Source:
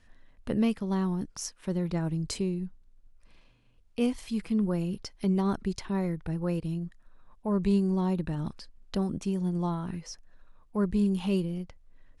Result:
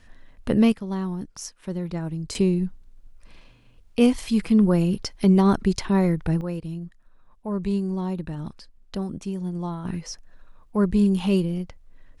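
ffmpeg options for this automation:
-af "asetnsamples=n=441:p=0,asendcmd='0.72 volume volume 0.5dB;2.35 volume volume 9.5dB;6.41 volume volume 0dB;9.85 volume volume 6.5dB',volume=8dB"

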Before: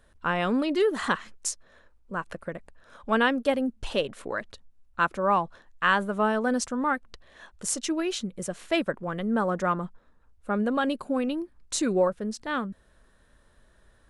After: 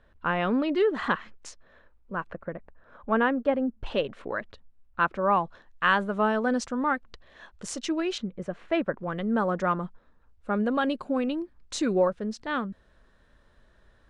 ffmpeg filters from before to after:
-af "asetnsamples=n=441:p=0,asendcmd='2.3 lowpass f 1700;3.86 lowpass f 3100;5.41 lowpass f 5100;8.18 lowpass f 2100;8.98 lowpass f 5200',lowpass=3.1k"

